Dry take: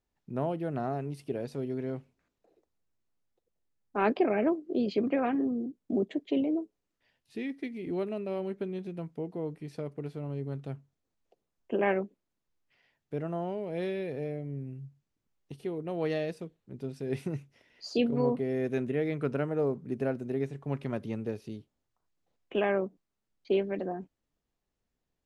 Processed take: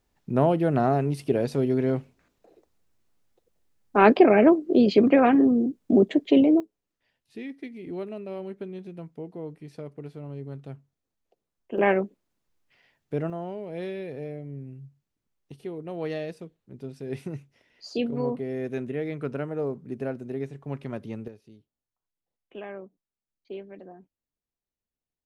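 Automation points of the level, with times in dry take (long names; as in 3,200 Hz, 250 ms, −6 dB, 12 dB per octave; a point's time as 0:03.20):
+10.5 dB
from 0:06.60 −1.5 dB
from 0:11.78 +6 dB
from 0:13.30 −0.5 dB
from 0:21.28 −11 dB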